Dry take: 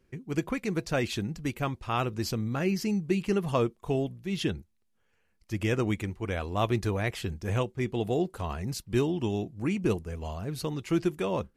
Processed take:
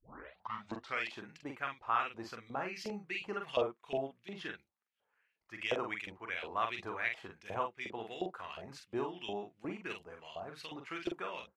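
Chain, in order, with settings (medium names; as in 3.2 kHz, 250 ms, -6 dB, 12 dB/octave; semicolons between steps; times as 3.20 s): tape start-up on the opening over 1.08 s; LFO band-pass saw up 2.8 Hz 610–3500 Hz; doubling 44 ms -5 dB; trim +2 dB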